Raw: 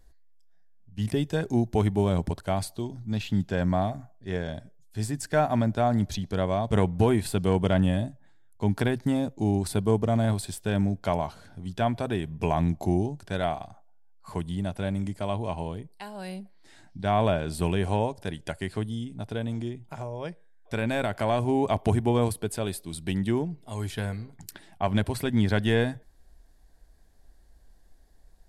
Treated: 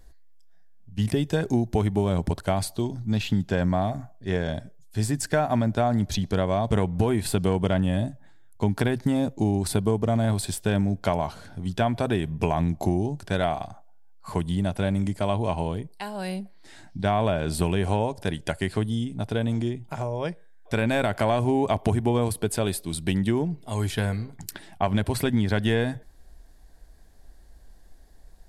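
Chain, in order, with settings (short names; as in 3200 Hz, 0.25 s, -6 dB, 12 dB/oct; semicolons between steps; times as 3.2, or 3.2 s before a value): compressor, threshold -25 dBFS, peak gain reduction 8.5 dB; gain +6 dB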